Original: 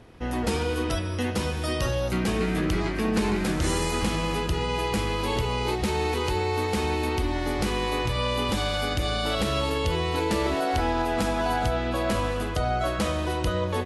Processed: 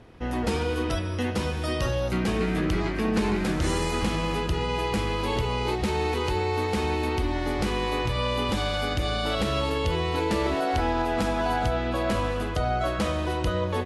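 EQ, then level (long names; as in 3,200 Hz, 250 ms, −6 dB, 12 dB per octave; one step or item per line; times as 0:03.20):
high-shelf EQ 6,800 Hz −7 dB
0.0 dB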